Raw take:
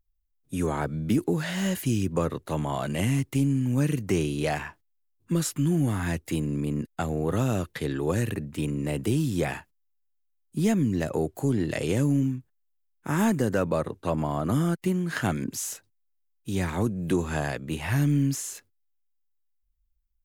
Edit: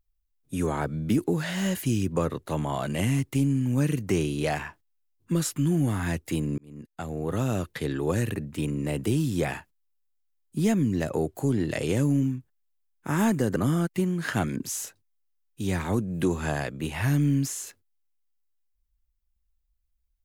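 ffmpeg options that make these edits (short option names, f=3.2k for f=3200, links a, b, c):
-filter_complex "[0:a]asplit=3[a][b][c];[a]atrim=end=6.58,asetpts=PTS-STARTPTS,afade=t=out:st=6.576:d=0.004:c=hsin[d];[b]atrim=start=6.58:end=13.562,asetpts=PTS-STARTPTS,afade=t=in:d=1.35:c=qsin[e];[c]atrim=start=14.438[f];[d][e]concat=n=2:v=0:a=1[g];[g][f]acrossfade=d=0.004:c1=hsin:c2=hsin"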